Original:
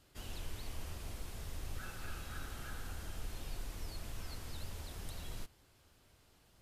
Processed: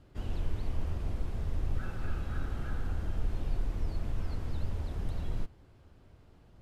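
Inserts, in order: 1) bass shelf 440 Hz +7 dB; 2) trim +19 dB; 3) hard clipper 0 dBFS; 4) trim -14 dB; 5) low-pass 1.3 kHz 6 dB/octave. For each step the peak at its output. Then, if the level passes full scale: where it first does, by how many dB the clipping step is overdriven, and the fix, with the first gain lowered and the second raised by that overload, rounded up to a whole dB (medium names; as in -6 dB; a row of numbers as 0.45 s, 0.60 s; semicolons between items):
-24.0 dBFS, -5.0 dBFS, -5.0 dBFS, -19.0 dBFS, -19.5 dBFS; nothing clips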